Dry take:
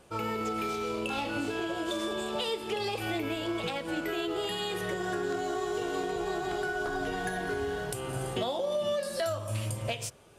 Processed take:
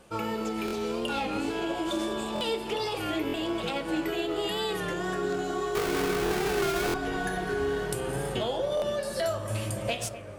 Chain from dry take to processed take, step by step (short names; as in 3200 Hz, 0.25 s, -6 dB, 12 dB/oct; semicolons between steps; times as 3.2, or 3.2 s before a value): 5.75–6.92 half-waves squared off; in parallel at -1.5 dB: vocal rider; on the sum: analogue delay 0.26 s, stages 4096, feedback 79%, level -13.5 dB; on a send at -5 dB: reverb RT60 0.40 s, pre-delay 3 ms; on the sum: stuck buffer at 0.66/2.34/3.27/6.24/6.87/8.75, samples 1024, times 2; record warp 33 1/3 rpm, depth 100 cents; gain -4.5 dB